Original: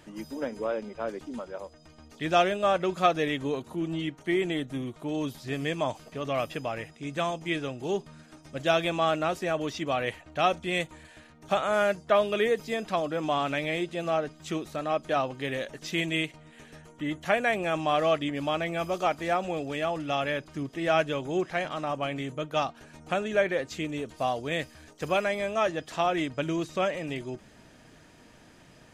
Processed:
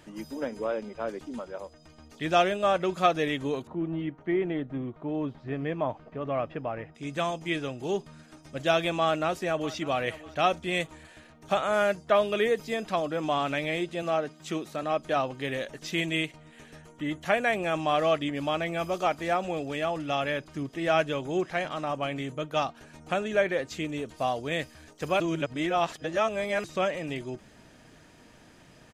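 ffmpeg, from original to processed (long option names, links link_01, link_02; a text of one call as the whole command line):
ffmpeg -i in.wav -filter_complex "[0:a]asettb=1/sr,asplit=3[link_01][link_02][link_03];[link_01]atrim=end=3.674[link_04];[link_02]atrim=start=3.67:end=6.95,asetpts=PTS-STARTPTS,afade=type=in:duration=0.004:curve=qsin,afade=type=out:start_time=3.276:duration=0.004:curve=qsin,lowpass=1600[link_05];[link_03]atrim=start=6.946[link_06];[link_04][link_05]acrossfade=duration=0.004:curve1=hsin:curve2=qsin[link_07];[link_07][link_06]acrossfade=duration=0.004:curve1=qsin:curve2=hsin,asplit=2[link_08][link_09];[link_09]afade=type=in:start_time=9.03:duration=0.01,afade=type=out:start_time=9.74:duration=0.01,aecho=0:1:600|1200|1800:0.141254|0.0494388|0.0173036[link_10];[link_08][link_10]amix=inputs=2:normalize=0,asettb=1/sr,asplit=3[link_11][link_12][link_13];[link_11]atrim=end=14.024[link_14];[link_12]atrim=start=14.02:end=14.83,asetpts=PTS-STARTPTS,afade=type=in:duration=0.004:curve=qsin,afade=type=out:start_time=0.806:duration=0.004:curve=qsin,highpass=130[link_15];[link_13]atrim=start=14.826[link_16];[link_14][link_15]acrossfade=duration=0.004:curve1=hsin:curve2=qsin[link_17];[link_17][link_16]acrossfade=duration=0.004:curve1=qsin:curve2=hsin,asplit=3[link_18][link_19][link_20];[link_18]atrim=end=25.202[link_21];[link_19]atrim=start=25.198:end=26.642,asetpts=PTS-STARTPTS,areverse[link_22];[link_20]atrim=start=26.638[link_23];[link_21][link_22]acrossfade=duration=0.004:curve1=hsin:curve2=hsin[link_24];[link_24][link_23]acrossfade=duration=0.004:curve1=hsin:curve2=hsin" out.wav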